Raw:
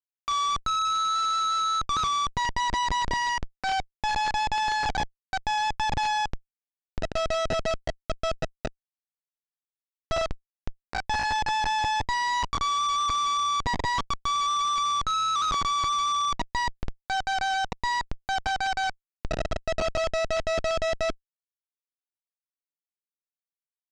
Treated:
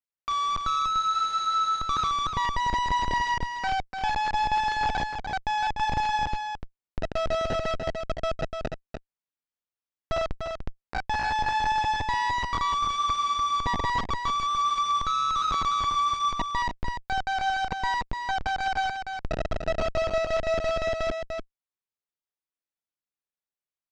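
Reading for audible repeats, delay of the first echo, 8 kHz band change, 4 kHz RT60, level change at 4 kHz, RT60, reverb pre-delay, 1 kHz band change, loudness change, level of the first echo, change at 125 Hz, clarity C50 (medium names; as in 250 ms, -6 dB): 1, 295 ms, -6.0 dB, no reverb, -3.0 dB, no reverb, no reverb, +0.5 dB, -0.5 dB, -6.0 dB, +1.0 dB, no reverb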